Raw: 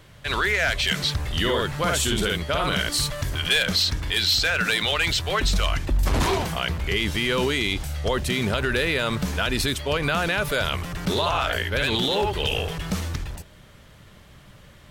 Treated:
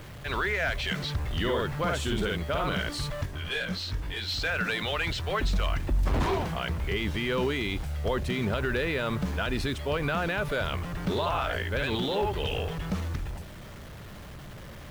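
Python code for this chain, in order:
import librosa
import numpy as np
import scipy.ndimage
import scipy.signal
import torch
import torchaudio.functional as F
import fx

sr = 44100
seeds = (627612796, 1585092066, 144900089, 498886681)

y = x + 0.5 * 10.0 ** (-34.5 / 20.0) * np.sign(x)
y = fx.lowpass(y, sr, hz=1900.0, slope=6)
y = fx.quant_dither(y, sr, seeds[0], bits=8, dither='none')
y = fx.detune_double(y, sr, cents=fx.line((3.25, 17.0), (4.27, 32.0)), at=(3.25, 4.27), fade=0.02)
y = F.gain(torch.from_numpy(y), -4.5).numpy()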